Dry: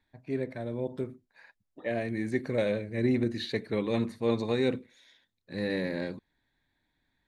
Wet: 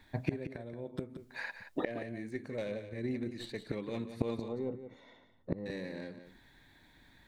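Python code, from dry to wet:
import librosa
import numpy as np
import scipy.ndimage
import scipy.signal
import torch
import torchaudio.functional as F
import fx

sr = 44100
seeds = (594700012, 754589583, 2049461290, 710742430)

y = fx.tracing_dist(x, sr, depth_ms=0.037)
y = fx.gate_flip(y, sr, shuts_db=-31.0, range_db=-25)
y = fx.savgol(y, sr, points=65, at=(4.48, 5.66))
y = y + 10.0 ** (-10.5 / 20.0) * np.pad(y, (int(176 * sr / 1000.0), 0))[:len(y)]
y = y * 10.0 ** (15.0 / 20.0)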